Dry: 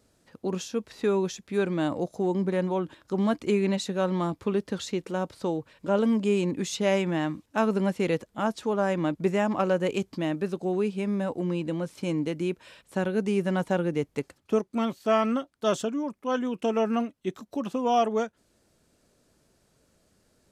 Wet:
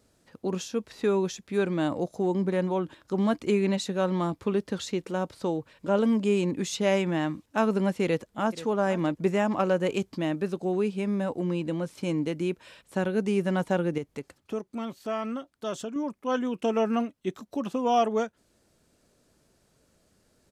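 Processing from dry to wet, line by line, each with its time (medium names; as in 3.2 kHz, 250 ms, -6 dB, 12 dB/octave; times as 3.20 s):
8.04–8.58 s: echo throw 480 ms, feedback 35%, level -15 dB
13.98–15.96 s: compression 1.5:1, threshold -41 dBFS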